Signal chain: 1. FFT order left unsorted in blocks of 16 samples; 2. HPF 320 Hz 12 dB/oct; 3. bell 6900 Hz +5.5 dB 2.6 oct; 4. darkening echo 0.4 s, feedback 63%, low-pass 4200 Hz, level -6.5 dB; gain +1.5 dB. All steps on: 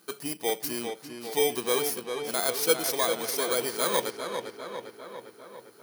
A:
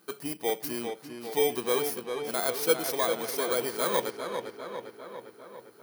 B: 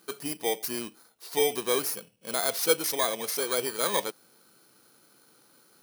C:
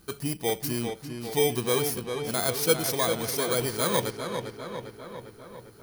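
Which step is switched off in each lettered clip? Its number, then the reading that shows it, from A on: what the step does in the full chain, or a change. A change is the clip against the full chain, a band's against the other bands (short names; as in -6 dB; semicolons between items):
3, 8 kHz band -4.5 dB; 4, echo-to-direct -5.0 dB to none; 2, 125 Hz band +14.5 dB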